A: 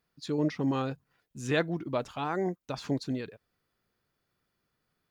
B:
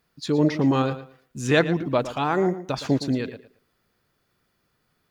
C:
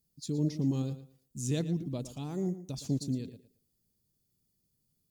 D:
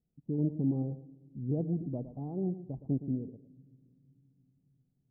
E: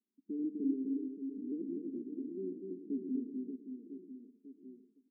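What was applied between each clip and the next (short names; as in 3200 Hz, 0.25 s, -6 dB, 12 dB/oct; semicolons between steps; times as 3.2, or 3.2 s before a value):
tape echo 0.114 s, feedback 24%, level -12 dB, low-pass 5500 Hz; gain +8.5 dB
EQ curve 190 Hz 0 dB, 1500 Hz -26 dB, 7400 Hz +5 dB; gain -5.5 dB
Chebyshev low-pass 790 Hz, order 4; on a send at -23.5 dB: reverb RT60 2.3 s, pre-delay 4 ms
Chebyshev band-pass 210–420 Hz, order 4; on a send: reverse bouncing-ball echo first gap 0.25 s, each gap 1.3×, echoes 5; on the sum: gain -2.5 dB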